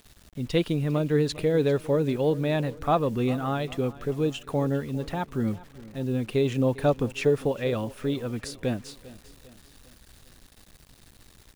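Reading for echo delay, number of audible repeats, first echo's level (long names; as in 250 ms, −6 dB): 400 ms, 3, −19.0 dB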